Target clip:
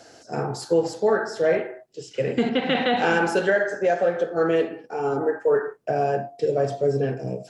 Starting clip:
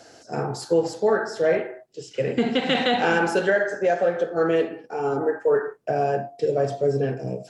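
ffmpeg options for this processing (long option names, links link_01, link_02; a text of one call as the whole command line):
ffmpeg -i in.wav -filter_complex "[0:a]asettb=1/sr,asplit=3[link_01][link_02][link_03];[link_01]atrim=end=2.494[link_04];[link_02]atrim=start=2.49:end=2.97,asetpts=PTS-STARTPTS,afade=type=in:duration=0.004:curve=qsin,afade=type=out:start_time=0.476:duration=0.004:curve=qsin,lowpass=3200[link_05];[link_03]atrim=start=2.966[link_06];[link_04][link_05]acrossfade=duration=0.004:curve1=hsin:curve2=qsin[link_07];[link_07][link_06]acrossfade=duration=0.004:curve1=qsin:curve2=hsin" out.wav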